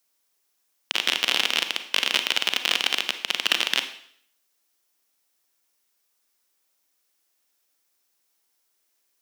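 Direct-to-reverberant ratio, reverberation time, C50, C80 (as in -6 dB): 8.5 dB, 0.60 s, 10.5 dB, 13.5 dB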